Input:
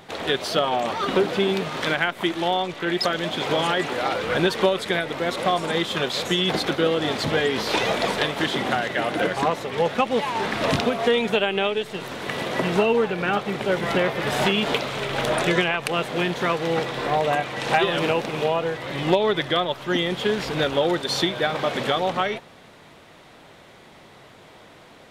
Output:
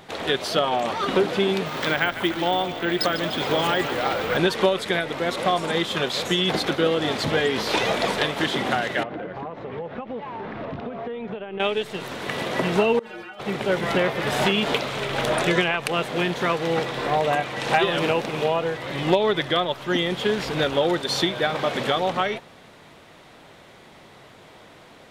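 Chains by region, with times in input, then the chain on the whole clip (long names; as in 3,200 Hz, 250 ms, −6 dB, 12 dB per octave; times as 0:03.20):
0:01.66–0:04.37: echo with shifted repeats 147 ms, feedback 61%, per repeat −30 Hz, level −12 dB + bad sample-rate conversion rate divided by 2×, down none, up hold
0:09.03–0:11.60: downward compressor 10 to 1, threshold −25 dBFS + head-to-tape spacing loss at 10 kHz 43 dB
0:12.99–0:13.40: low-shelf EQ 260 Hz −9.5 dB + compressor whose output falls as the input rises −28 dBFS + stiff-string resonator 110 Hz, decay 0.31 s, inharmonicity 0.008
whole clip: no processing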